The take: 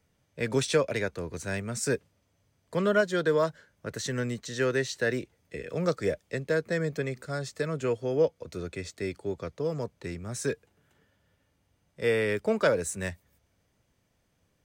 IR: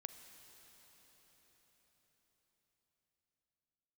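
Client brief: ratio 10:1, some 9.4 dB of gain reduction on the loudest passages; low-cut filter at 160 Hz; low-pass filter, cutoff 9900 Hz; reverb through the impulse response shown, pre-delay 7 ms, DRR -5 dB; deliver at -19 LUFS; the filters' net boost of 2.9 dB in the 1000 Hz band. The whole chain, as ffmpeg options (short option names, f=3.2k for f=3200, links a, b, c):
-filter_complex "[0:a]highpass=160,lowpass=9.9k,equalizer=f=1k:t=o:g=4,acompressor=threshold=-27dB:ratio=10,asplit=2[a][b];[1:a]atrim=start_sample=2205,adelay=7[c];[b][c]afir=irnorm=-1:irlink=0,volume=9.5dB[d];[a][d]amix=inputs=2:normalize=0,volume=9dB"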